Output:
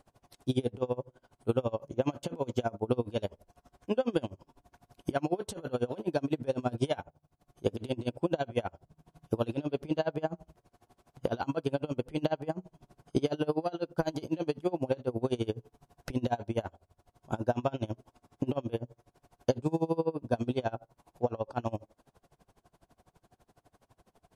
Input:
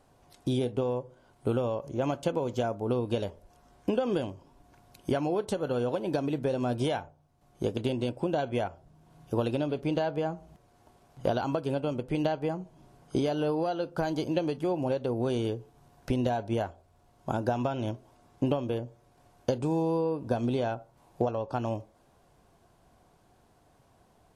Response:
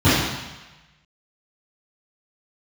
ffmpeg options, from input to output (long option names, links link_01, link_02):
-af "aeval=exprs='val(0)*pow(10,-27*(0.5-0.5*cos(2*PI*12*n/s))/20)':channel_layout=same,volume=3.5dB"